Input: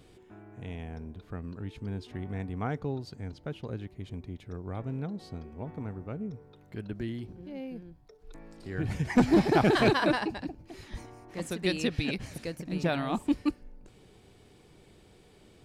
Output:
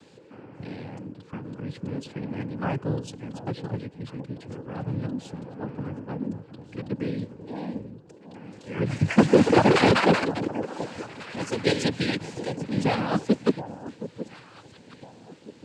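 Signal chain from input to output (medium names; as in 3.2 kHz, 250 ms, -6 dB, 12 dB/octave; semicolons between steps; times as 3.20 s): echo whose repeats swap between lows and highs 722 ms, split 880 Hz, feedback 54%, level -12 dB; noise-vocoded speech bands 8; trim +5.5 dB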